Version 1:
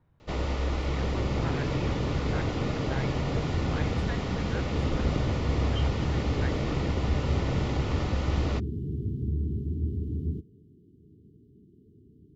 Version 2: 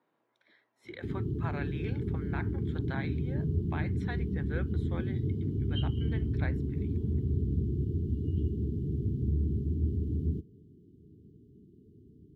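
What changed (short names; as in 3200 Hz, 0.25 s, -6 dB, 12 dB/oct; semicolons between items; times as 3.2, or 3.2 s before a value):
speech: add HPF 270 Hz 24 dB/oct; first sound: muted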